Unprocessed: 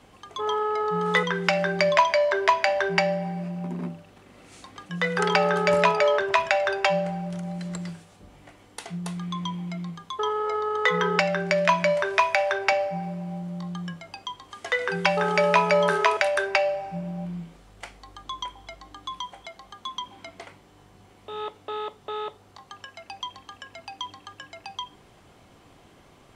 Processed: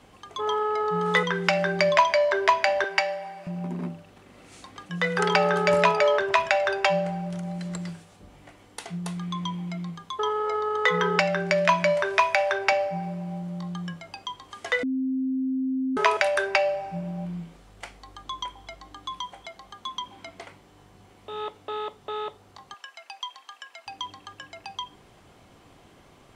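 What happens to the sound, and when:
0:02.84–0:03.47: high-pass filter 670 Hz
0:14.83–0:15.97: beep over 262 Hz −23.5 dBFS
0:22.74–0:23.87: high-pass filter 840 Hz

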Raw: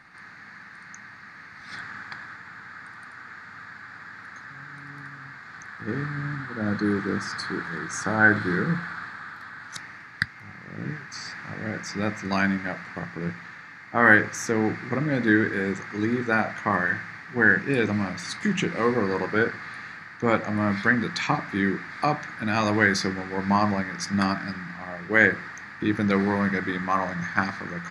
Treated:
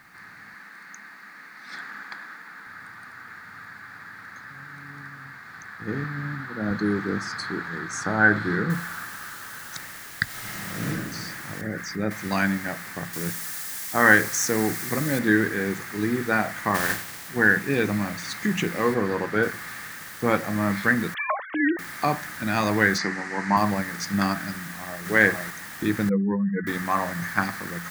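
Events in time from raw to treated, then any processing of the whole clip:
0:00.54–0:02.67: high-pass filter 200 Hz 24 dB per octave
0:06.04–0:06.71: band-pass filter 100–7,800 Hz
0:08.70: noise floor change −65 dB −43 dB
0:10.24–0:10.87: thrown reverb, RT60 1.5 s, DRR −6 dB
0:11.61–0:12.11: spectral envelope exaggerated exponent 1.5
0:13.13–0:15.19: bass and treble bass −1 dB, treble +10 dB
0:16.74–0:17.28: compressing power law on the bin magnitudes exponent 0.58
0:18.94–0:19.43: high-shelf EQ 5,900 Hz −10.5 dB
0:21.14–0:21.79: three sine waves on the formant tracks
0:22.98–0:23.57: loudspeaker in its box 180–7,400 Hz, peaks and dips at 490 Hz −5 dB, 940 Hz +4 dB, 1,900 Hz +7 dB, 3,400 Hz −8 dB
0:24.59–0:25.04: delay throw 460 ms, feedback 15%, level −0.5 dB
0:26.09–0:26.67: expanding power law on the bin magnitudes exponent 2.7

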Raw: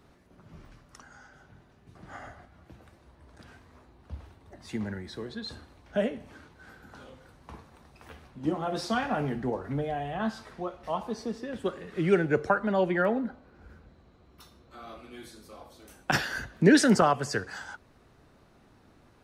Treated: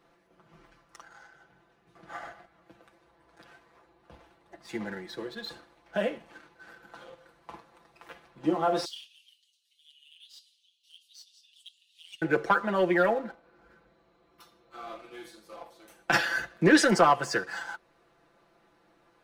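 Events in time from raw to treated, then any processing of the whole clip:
0:08.85–0:12.22: Chebyshev high-pass filter 2,900 Hz, order 6
whole clip: bass and treble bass −13 dB, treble −5 dB; leveller curve on the samples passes 1; comb filter 5.9 ms, depth 80%; level −1.5 dB

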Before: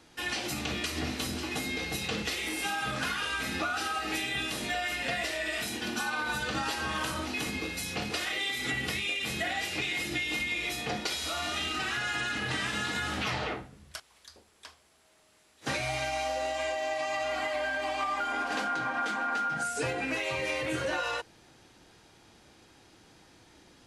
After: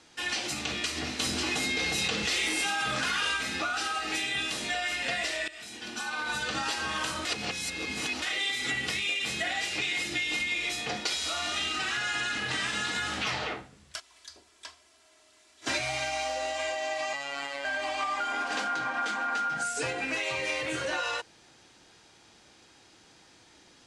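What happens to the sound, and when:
0:01.19–0:03.37: envelope flattener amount 100%
0:05.48–0:06.39: fade in, from −17 dB
0:07.25–0:08.22: reverse
0:13.96–0:15.79: comb filter 3 ms, depth 72%
0:17.13–0:17.65: phases set to zero 140 Hz
whole clip: low-pass filter 9,000 Hz 24 dB per octave; spectral tilt +1.5 dB per octave

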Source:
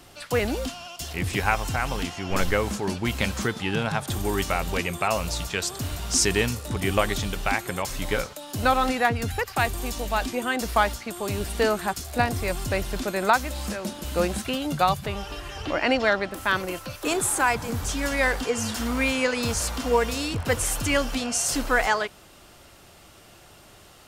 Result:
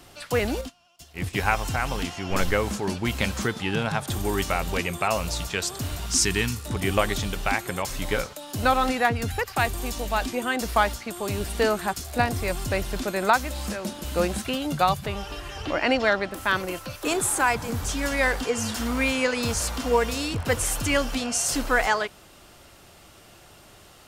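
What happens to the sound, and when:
0:00.61–0:01.38: expander for the loud parts 2.5 to 1, over −39 dBFS
0:06.06–0:06.66: parametric band 580 Hz −14 dB 0.66 octaves

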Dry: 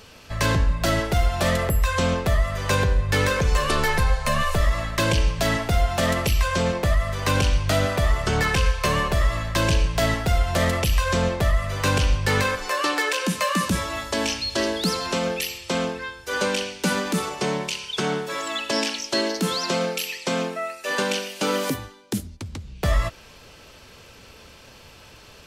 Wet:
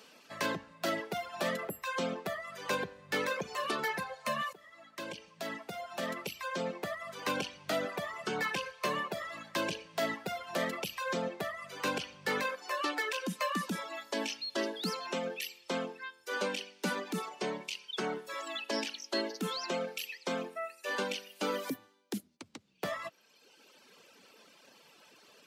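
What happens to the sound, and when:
0:04.53–0:07.09: fade in, from −14.5 dB
whole clip: reverb reduction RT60 1.4 s; high-pass filter 200 Hz 24 dB per octave; dynamic equaliser 8,500 Hz, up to −6 dB, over −46 dBFS, Q 0.8; level −8.5 dB

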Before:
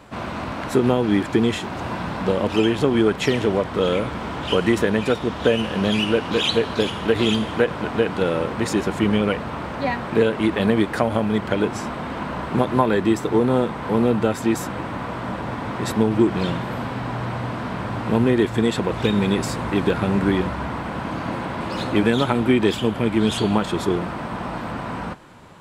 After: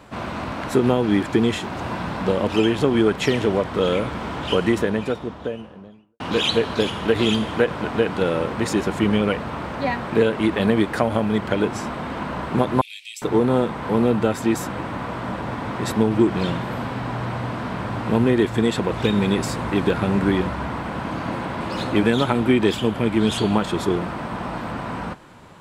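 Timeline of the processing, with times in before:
0:04.37–0:06.20: fade out and dull
0:12.81–0:13.22: Chebyshev high-pass filter 2,300 Hz, order 6

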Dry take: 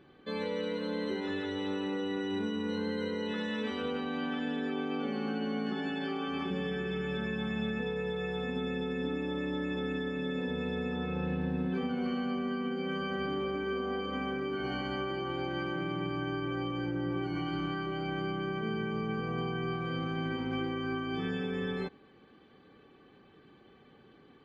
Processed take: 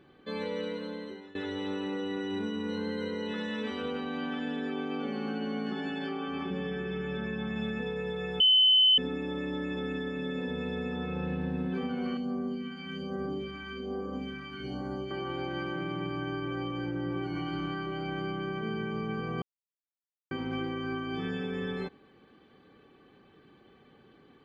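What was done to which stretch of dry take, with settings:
0:00.62–0:01.35: fade out linear, to −21 dB
0:06.09–0:07.56: low-pass filter 3,600 Hz 6 dB per octave
0:08.40–0:08.98: beep over 3,040 Hz −18 dBFS
0:12.17–0:15.11: all-pass phaser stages 2, 1.2 Hz, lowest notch 430–2,700 Hz
0:19.42–0:20.31: silence

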